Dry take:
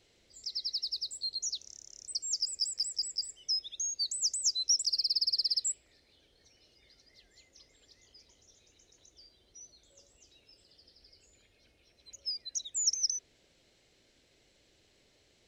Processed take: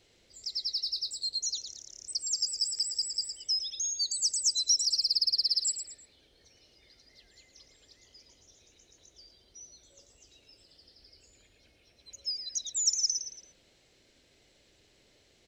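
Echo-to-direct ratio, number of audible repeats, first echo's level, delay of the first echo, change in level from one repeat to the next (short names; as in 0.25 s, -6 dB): -8.5 dB, 3, -9.0 dB, 0.112 s, -8.5 dB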